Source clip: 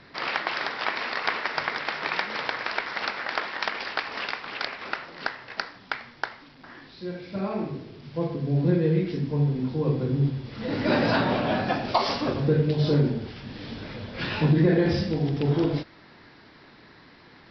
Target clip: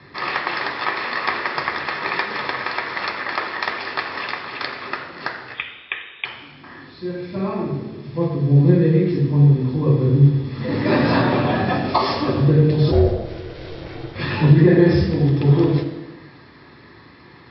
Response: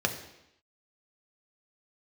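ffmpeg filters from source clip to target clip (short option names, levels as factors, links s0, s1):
-filter_complex "[0:a]asettb=1/sr,asplit=3[s0][s1][s2];[s0]atrim=end=5.544[s3];[s1]atrim=start=5.54:end=6.25,asetpts=PTS-STARTPTS,afade=t=in:d=0.004:c=qsin,afade=t=out:st=0.706:d=0.004:c=qsin,lowpass=f=3300:t=q:w=0.5098,lowpass=f=3300:t=q:w=0.6013,lowpass=f=3300:t=q:w=0.9,lowpass=f=3300:t=q:w=2.563,afreqshift=-3900[s4];[s2]atrim=start=6.246[s5];[s3][s4]acrossfade=d=0.004:c1=hsin:c2=qsin[s6];[s6][s5]acrossfade=d=0.004:c1=qsin:c2=hsin[s7];[1:a]atrim=start_sample=2205,asetrate=31752,aresample=44100[s8];[s7][s8]afir=irnorm=-1:irlink=0,asplit=3[s9][s10][s11];[s9]afade=t=out:st=12.91:d=0.02[s12];[s10]aeval=exprs='val(0)*sin(2*PI*230*n/s)':c=same,afade=t=in:st=12.91:d=0.02,afade=t=out:st=14.14:d=0.02[s13];[s11]afade=t=in:st=14.14:d=0.02[s14];[s12][s13][s14]amix=inputs=3:normalize=0,volume=0.473"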